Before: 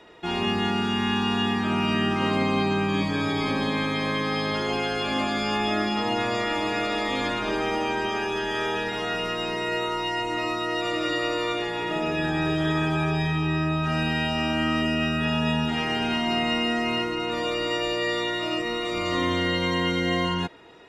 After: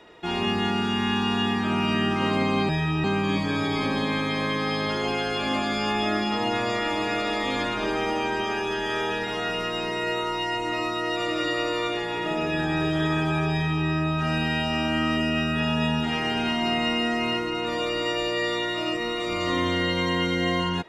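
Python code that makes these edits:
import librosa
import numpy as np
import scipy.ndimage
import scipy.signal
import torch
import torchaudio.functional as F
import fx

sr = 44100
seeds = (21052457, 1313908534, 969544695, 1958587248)

y = fx.edit(x, sr, fx.duplicate(start_s=13.16, length_s=0.35, to_s=2.69), tone=tone)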